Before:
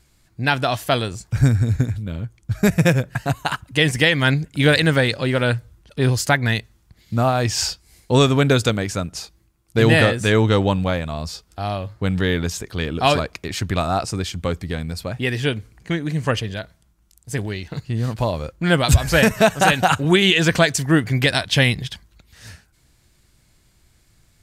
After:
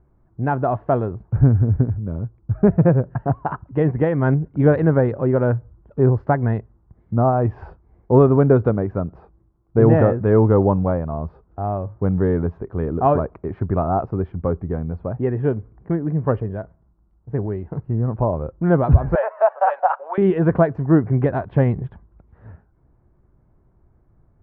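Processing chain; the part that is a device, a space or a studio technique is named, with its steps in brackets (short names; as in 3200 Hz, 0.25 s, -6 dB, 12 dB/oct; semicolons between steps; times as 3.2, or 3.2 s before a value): 19.15–20.18 Chebyshev high-pass 550 Hz, order 5; under water (LPF 1100 Hz 24 dB/oct; bell 390 Hz +5 dB 0.21 oct); gain +1.5 dB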